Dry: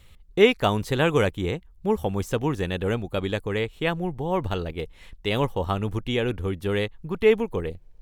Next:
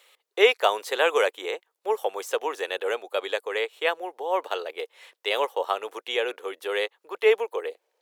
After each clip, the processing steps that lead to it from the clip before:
Butterworth high-pass 440 Hz 36 dB per octave
level +2 dB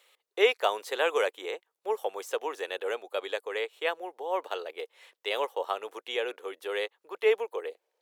low-shelf EQ 330 Hz +3 dB
level −5.5 dB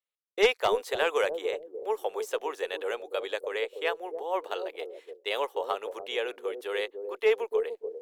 harmonic generator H 2 −7 dB, 4 −18 dB, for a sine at −9.5 dBFS
bucket-brigade delay 291 ms, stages 1,024, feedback 30%, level −4 dB
downward expander −41 dBFS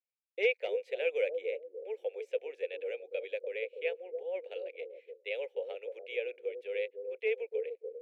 pair of resonant band-passes 1,100 Hz, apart 2.2 octaves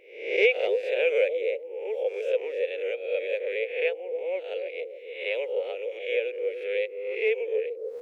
peak hold with a rise ahead of every peak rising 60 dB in 0.65 s
level +6 dB

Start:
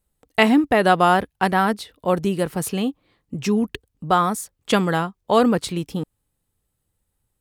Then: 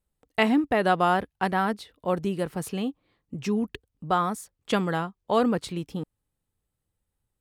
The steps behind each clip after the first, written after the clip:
high-shelf EQ 5,500 Hz −5.5 dB
level −6 dB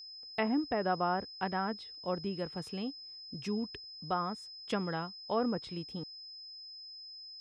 treble cut that deepens with the level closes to 1,600 Hz, closed at −19 dBFS
steady tone 5,100 Hz −37 dBFS
level −9 dB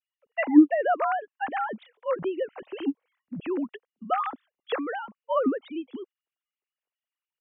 three sine waves on the formant tracks
level +8.5 dB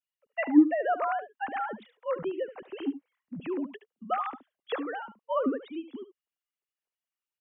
single-tap delay 73 ms −13.5 dB
level −3.5 dB

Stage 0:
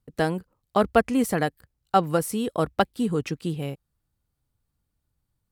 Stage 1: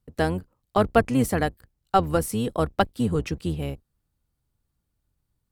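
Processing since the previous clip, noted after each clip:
sub-octave generator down 1 octave, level −4 dB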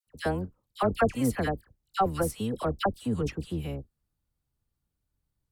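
all-pass dispersion lows, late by 70 ms, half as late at 1,400 Hz
level −5 dB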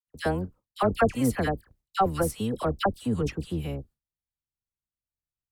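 noise gate with hold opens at −48 dBFS
level +2 dB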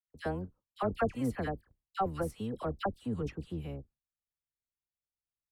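high-shelf EQ 4,100 Hz −10 dB
level −8 dB

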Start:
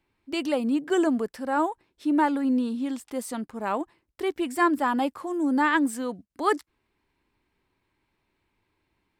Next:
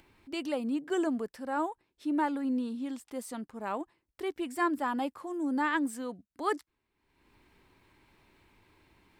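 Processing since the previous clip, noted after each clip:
upward compression, threshold −41 dBFS
level −7 dB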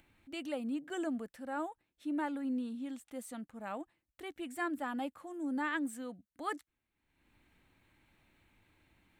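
thirty-one-band graphic EQ 400 Hz −10 dB, 1,000 Hz −8 dB, 5,000 Hz −9 dB
level −4 dB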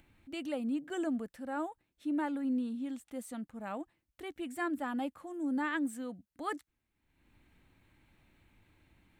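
low-shelf EQ 290 Hz +5.5 dB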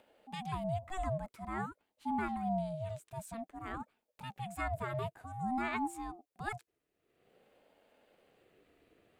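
ring modulator whose carrier an LFO sweeps 470 Hz, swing 20%, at 0.51 Hz
level +1 dB

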